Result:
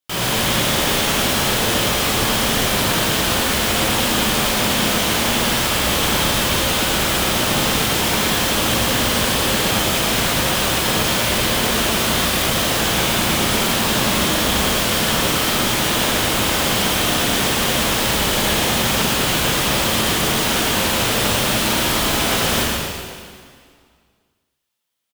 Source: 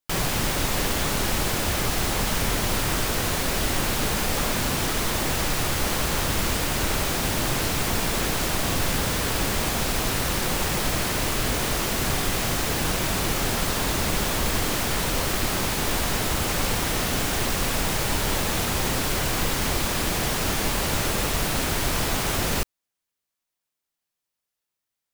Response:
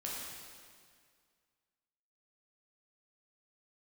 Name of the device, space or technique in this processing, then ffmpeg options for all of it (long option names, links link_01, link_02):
PA in a hall: -filter_complex "[0:a]highpass=frequency=100:poles=1,equalizer=frequency=3200:width_type=o:width=0.47:gain=6,aecho=1:1:112:0.531[link_01];[1:a]atrim=start_sample=2205[link_02];[link_01][link_02]afir=irnorm=-1:irlink=0,volume=4.5dB"